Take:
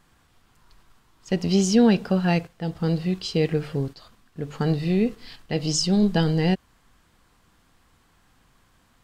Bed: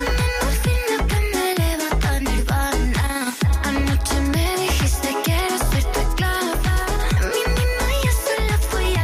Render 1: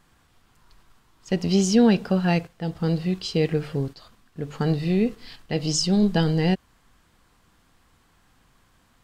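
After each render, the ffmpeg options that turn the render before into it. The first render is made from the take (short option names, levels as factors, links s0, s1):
-af anull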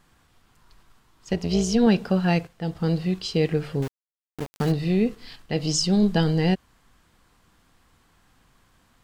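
-filter_complex "[0:a]asettb=1/sr,asplit=3[s0][s1][s2];[s0]atrim=end=1.334[s3];[s1]atrim=start=1.33:end=1.87,asetpts=PTS-STARTPTS,afade=t=in:d=0.004:c=qsin,afade=t=out:st=0.536:d=0.004:c=qsin,tremolo=f=250:d=0.571[s4];[s2]atrim=start=1.866[s5];[s3][s4]acrossfade=d=0.004:c1=hsin:c2=qsin[s6];[s6][s5]acrossfade=d=0.004:c1=qsin:c2=hsin,asettb=1/sr,asplit=3[s7][s8][s9];[s7]atrim=end=3.824[s10];[s8]atrim=start=3.82:end=4.72,asetpts=PTS-STARTPTS,afade=t=in:d=0.004:c=qsin,afade=t=out:st=0.896:d=0.004:c=qsin,aeval=exprs='val(0)*gte(abs(val(0)),0.0335)':c=same[s11];[s9]atrim=start=4.716[s12];[s10][s11]acrossfade=d=0.004:c1=hsin:c2=qsin[s13];[s13][s12]acrossfade=d=0.004:c1=qsin:c2=hsin"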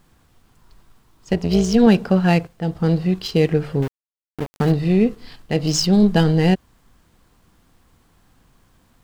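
-filter_complex "[0:a]asplit=2[s0][s1];[s1]adynamicsmooth=sensitivity=7.5:basefreq=970,volume=0.891[s2];[s0][s2]amix=inputs=2:normalize=0,acrusher=bits=10:mix=0:aa=0.000001"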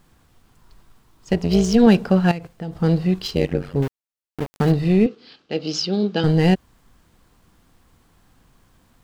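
-filter_complex "[0:a]asettb=1/sr,asplit=3[s0][s1][s2];[s0]atrim=end=2.314[s3];[s1]atrim=start=2.31:end=2.73,asetpts=PTS-STARTPTS,afade=t=in:d=0.004:c=qsin,afade=t=out:st=0.416:d=0.004:c=qsin,acompressor=threshold=0.0631:ratio=8:attack=3.2:release=140:knee=1:detection=peak[s4];[s2]atrim=start=2.726[s5];[s3][s4]acrossfade=d=0.004:c1=hsin:c2=qsin[s6];[s6][s5]acrossfade=d=0.004:c1=qsin:c2=hsin,asettb=1/sr,asplit=3[s7][s8][s9];[s7]atrim=end=3.354[s10];[s8]atrim=start=3.35:end=3.76,asetpts=PTS-STARTPTS,afade=t=in:d=0.004:c=qsin,afade=t=out:st=0.406:d=0.004:c=qsin,tremolo=f=90:d=0.947[s11];[s9]atrim=start=3.756[s12];[s10][s11]acrossfade=d=0.004:c1=hsin:c2=qsin[s13];[s13][s12]acrossfade=d=0.004:c1=qsin:c2=hsin,asettb=1/sr,asplit=3[s14][s15][s16];[s14]atrim=end=5.064[s17];[s15]atrim=start=5.06:end=6.24,asetpts=PTS-STARTPTS,afade=t=in:d=0.004:c=qsin,afade=t=out:st=1.176:d=0.004:c=qsin,highpass=310,equalizer=f=680:t=q:w=4:g=-7,equalizer=f=1000:t=q:w=4:g=-10,equalizer=f=1900:t=q:w=4:g=-9,lowpass=f=5100:w=0.5412,lowpass=f=5100:w=1.3066[s18];[s16]atrim=start=6.236[s19];[s17][s18]acrossfade=d=0.004:c1=hsin:c2=qsin[s20];[s20][s19]acrossfade=d=0.004:c1=qsin:c2=hsin"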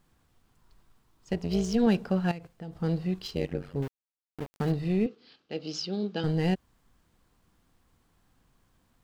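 -af "volume=0.299"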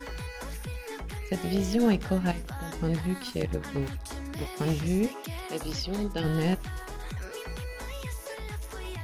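-filter_complex "[1:a]volume=0.126[s0];[0:a][s0]amix=inputs=2:normalize=0"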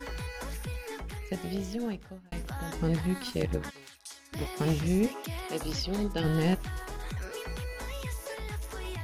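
-filter_complex "[0:a]asplit=3[s0][s1][s2];[s0]afade=t=out:st=3.69:d=0.02[s3];[s1]bandpass=f=6400:t=q:w=0.7,afade=t=in:st=3.69:d=0.02,afade=t=out:st=4.32:d=0.02[s4];[s2]afade=t=in:st=4.32:d=0.02[s5];[s3][s4][s5]amix=inputs=3:normalize=0,asplit=2[s6][s7];[s6]atrim=end=2.32,asetpts=PTS-STARTPTS,afade=t=out:st=0.76:d=1.56[s8];[s7]atrim=start=2.32,asetpts=PTS-STARTPTS,afade=t=in:d=0.004:c=hsin[s9];[s8][s9]concat=n=2:v=0:a=1"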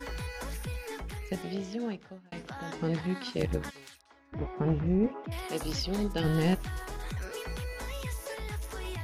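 -filter_complex "[0:a]asettb=1/sr,asplit=3[s0][s1][s2];[s0]atrim=end=1.424[s3];[s1]atrim=start=1.42:end=3.39,asetpts=PTS-STARTPTS,afade=t=in:d=0.004:c=qsin,afade=t=out:st=1.966:d=0.004:c=qsin,highpass=170,lowpass=5700[s4];[s2]atrim=start=3.386[s5];[s3][s4]acrossfade=d=0.004:c1=hsin:c2=qsin[s6];[s6][s5]acrossfade=d=0.004:c1=qsin:c2=hsin,asettb=1/sr,asplit=3[s7][s8][s9];[s7]atrim=end=4.014[s10];[s8]atrim=start=4.01:end=5.32,asetpts=PTS-STARTPTS,afade=t=in:d=0.004:c=qsin,afade=t=out:st=1.306:d=0.004:c=qsin,lowpass=1300[s11];[s9]atrim=start=5.316[s12];[s10][s11]acrossfade=d=0.004:c1=hsin:c2=qsin[s13];[s13][s12]acrossfade=d=0.004:c1=qsin:c2=hsin"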